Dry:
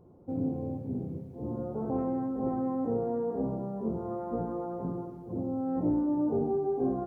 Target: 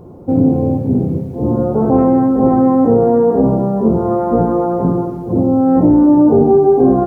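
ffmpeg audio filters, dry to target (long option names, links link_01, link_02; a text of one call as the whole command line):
ffmpeg -i in.wav -af "alimiter=level_in=21dB:limit=-1dB:release=50:level=0:latency=1,volume=-1dB" out.wav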